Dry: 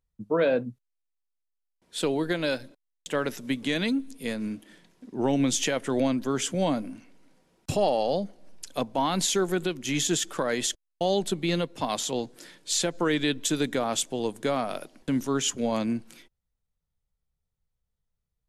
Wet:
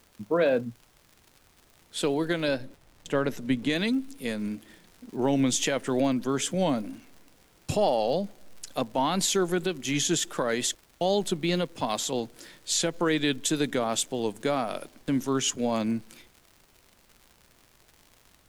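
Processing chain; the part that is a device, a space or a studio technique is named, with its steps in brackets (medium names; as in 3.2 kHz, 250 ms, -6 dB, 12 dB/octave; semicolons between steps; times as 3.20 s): vinyl LP (wow and flutter; crackle 120 per s -41 dBFS; pink noise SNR 33 dB); 2.48–3.70 s: tilt EQ -1.5 dB/octave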